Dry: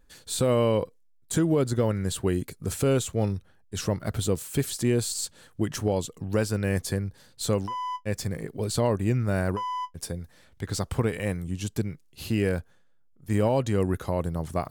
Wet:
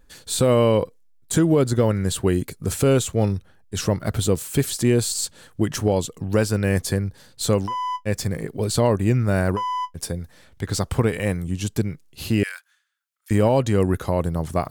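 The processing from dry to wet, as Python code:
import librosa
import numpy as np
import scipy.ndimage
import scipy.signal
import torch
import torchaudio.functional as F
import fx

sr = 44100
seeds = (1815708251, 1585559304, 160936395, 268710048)

y = fx.highpass(x, sr, hz=1400.0, slope=24, at=(12.43, 13.31))
y = y * 10.0 ** (5.5 / 20.0)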